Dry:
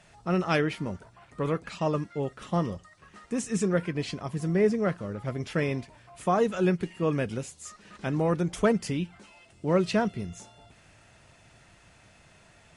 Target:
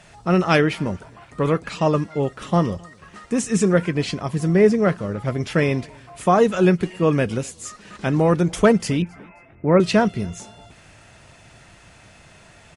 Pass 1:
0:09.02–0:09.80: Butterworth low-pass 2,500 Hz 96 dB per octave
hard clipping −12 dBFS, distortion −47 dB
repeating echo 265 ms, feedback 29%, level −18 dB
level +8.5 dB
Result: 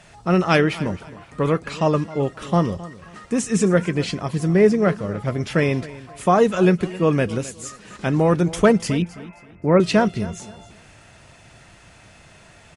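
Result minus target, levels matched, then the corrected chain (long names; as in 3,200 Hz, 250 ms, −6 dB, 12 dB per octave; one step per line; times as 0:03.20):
echo-to-direct +10 dB
0:09.02–0:09.80: Butterworth low-pass 2,500 Hz 96 dB per octave
hard clipping −12 dBFS, distortion −47 dB
repeating echo 265 ms, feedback 29%, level −28 dB
level +8.5 dB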